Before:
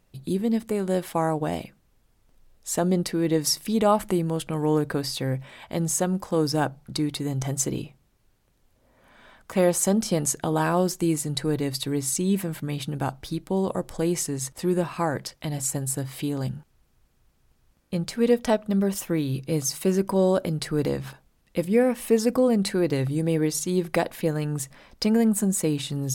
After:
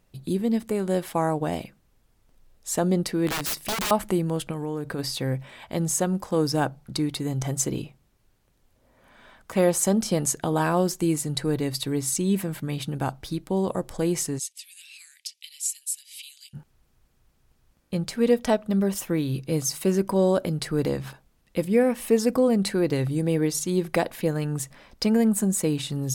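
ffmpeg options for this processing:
ffmpeg -i in.wav -filter_complex "[0:a]asettb=1/sr,asplit=3[link_01][link_02][link_03];[link_01]atrim=end=3.274[link_04];[link_02]atrim=start=3.27:end=3.91,asetpts=PTS-STARTPTS,afade=type=in:duration=0.004:curve=qsin,afade=type=out:start_time=0.636:duration=0.004:curve=qsin,aeval=exprs='(mod(13.3*val(0)+1,2)-1)/13.3':channel_layout=same[link_05];[link_03]atrim=start=3.906[link_06];[link_04][link_05]acrossfade=duration=0.004:curve1=hsin:curve2=qsin[link_07];[link_07][link_06]acrossfade=duration=0.004:curve1=qsin:curve2=hsin,asplit=3[link_08][link_09][link_10];[link_08]afade=type=out:start_time=4.51:duration=0.02[link_11];[link_09]acompressor=threshold=-27dB:ratio=4:attack=3.2:release=140:knee=1:detection=peak,afade=type=in:start_time=4.51:duration=0.02,afade=type=out:start_time=4.98:duration=0.02[link_12];[link_10]afade=type=in:start_time=4.98:duration=0.02[link_13];[link_11][link_12][link_13]amix=inputs=3:normalize=0,asplit=3[link_14][link_15][link_16];[link_14]afade=type=out:start_time=14.38:duration=0.02[link_17];[link_15]asuperpass=centerf=6000:order=12:qfactor=0.61,afade=type=in:start_time=14.38:duration=0.02,afade=type=out:start_time=16.53:duration=0.02[link_18];[link_16]afade=type=in:start_time=16.53:duration=0.02[link_19];[link_17][link_18][link_19]amix=inputs=3:normalize=0" out.wav

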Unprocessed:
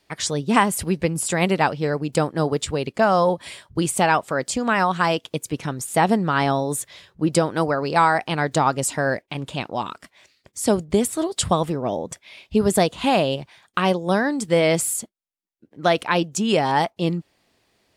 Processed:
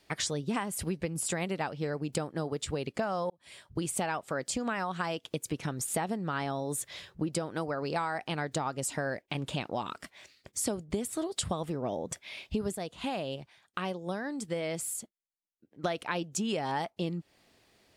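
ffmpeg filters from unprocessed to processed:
ffmpeg -i in.wav -filter_complex "[0:a]asplit=4[link_01][link_02][link_03][link_04];[link_01]atrim=end=3.3,asetpts=PTS-STARTPTS,afade=type=out:start_time=3.296:duration=0.004:curve=hsin[link_05];[link_02]atrim=start=3.3:end=12.752,asetpts=PTS-STARTPTS,afade=type=in:duration=0.81[link_06];[link_03]atrim=start=12.748:end=15.842,asetpts=PTS-STARTPTS,volume=-10.5dB[link_07];[link_04]atrim=start=15.838[link_08];[link_05][link_06]concat=n=2:v=0:a=1[link_09];[link_09][link_07]acrossfade=duration=0.004:curve1=hsin:curve2=hsin[link_10];[link_10][link_08]acrossfade=duration=0.004:curve1=hsin:curve2=hsin,equalizer=frequency=1000:width=5.4:gain=-2.5,acompressor=threshold=-30dB:ratio=6" out.wav

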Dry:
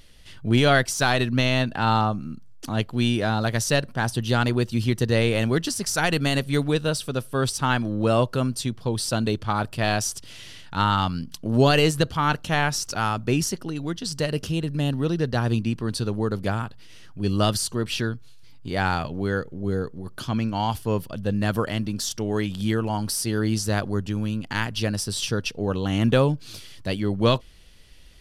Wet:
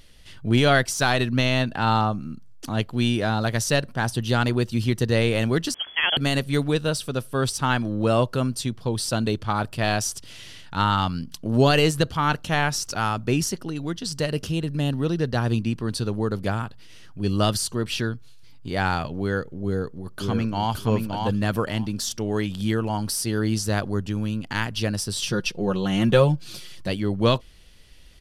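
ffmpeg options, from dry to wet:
ffmpeg -i in.wav -filter_complex "[0:a]asettb=1/sr,asplit=3[link_01][link_02][link_03];[link_01]atrim=end=5.744[link_04];[link_02]atrim=start=5.74:end=6.17,asetpts=PTS-STARTPTS,afade=type=in:duration=0.004:curve=qsin,afade=type=out:start_time=0.426:duration=0.004:curve=qsin,lowpass=frequency=2900:width_type=q:width=0.5098,lowpass=frequency=2900:width_type=q:width=0.6013,lowpass=frequency=2900:width_type=q:width=0.9,lowpass=frequency=2900:width_type=q:width=2.563,afreqshift=-3400[link_05];[link_03]atrim=start=6.166[link_06];[link_04][link_05]acrossfade=duration=0.004:curve1=hsin:curve2=qsin[link_07];[link_07][link_06]acrossfade=duration=0.004:curve1=qsin:curve2=hsin,asplit=2[link_08][link_09];[link_09]afade=type=in:start_time=19.63:duration=0.01,afade=type=out:start_time=20.74:duration=0.01,aecho=0:1:570|1140|1710:0.668344|0.100252|0.0150377[link_10];[link_08][link_10]amix=inputs=2:normalize=0,asettb=1/sr,asplit=3[link_11][link_12][link_13];[link_11]atrim=end=25.264[link_14];[link_12]atrim=start=25.26:end=26.89,asetpts=PTS-STARTPTS,afade=type=in:duration=0.004:curve=qsin,afade=type=out:start_time=1.626:duration=0.004:curve=qsin,aecho=1:1:5.6:0.65,atrim=end_sample=71883[link_15];[link_13]atrim=start=26.886[link_16];[link_14][link_15]acrossfade=duration=0.004:curve1=hsin:curve2=qsin[link_17];[link_17][link_16]acrossfade=duration=0.004:curve1=qsin:curve2=hsin" out.wav

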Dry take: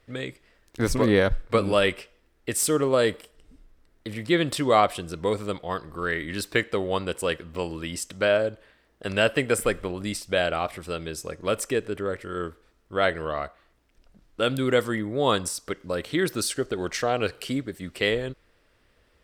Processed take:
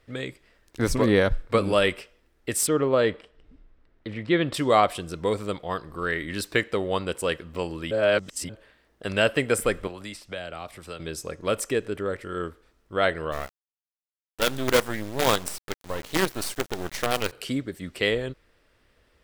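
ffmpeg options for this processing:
ffmpeg -i in.wav -filter_complex "[0:a]asplit=3[link_01][link_02][link_03];[link_01]afade=type=out:start_time=2.66:duration=0.02[link_04];[link_02]lowpass=3300,afade=type=in:start_time=2.66:duration=0.02,afade=type=out:start_time=4.53:duration=0.02[link_05];[link_03]afade=type=in:start_time=4.53:duration=0.02[link_06];[link_04][link_05][link_06]amix=inputs=3:normalize=0,asettb=1/sr,asplit=3[link_07][link_08][link_09];[link_07]atrim=end=9.874[link_10];[link_08]atrim=start=9.87:end=11,asetpts=PTS-STARTPTS,afade=type=in:duration=0.004:curve=qsin,afade=type=out:start_time=1.126:duration=0.004:curve=qsin,acrossover=split=220|520|3500[link_11][link_12][link_13][link_14];[link_11]acompressor=threshold=-47dB:ratio=3[link_15];[link_12]acompressor=threshold=-48dB:ratio=3[link_16];[link_13]acompressor=threshold=-39dB:ratio=3[link_17];[link_14]acompressor=threshold=-49dB:ratio=3[link_18];[link_15][link_16][link_17][link_18]amix=inputs=4:normalize=0[link_19];[link_09]atrim=start=10.996[link_20];[link_10][link_19]acrossfade=duration=0.004:curve1=hsin:curve2=qsin[link_21];[link_21][link_20]acrossfade=duration=0.004:curve1=qsin:curve2=hsin,asplit=3[link_22][link_23][link_24];[link_22]afade=type=out:start_time=13.31:duration=0.02[link_25];[link_23]acrusher=bits=4:dc=4:mix=0:aa=0.000001,afade=type=in:start_time=13.31:duration=0.02,afade=type=out:start_time=17.31:duration=0.02[link_26];[link_24]afade=type=in:start_time=17.31:duration=0.02[link_27];[link_25][link_26][link_27]amix=inputs=3:normalize=0,asplit=3[link_28][link_29][link_30];[link_28]atrim=end=7.912[link_31];[link_29]atrim=start=7.908:end=8.492,asetpts=PTS-STARTPTS,areverse[link_32];[link_30]atrim=start=8.488[link_33];[link_31][link_32]acrossfade=duration=0.004:curve1=hsin:curve2=hsin[link_34];[link_34][link_33]acrossfade=duration=0.004:curve1=hsin:curve2=hsin" out.wav

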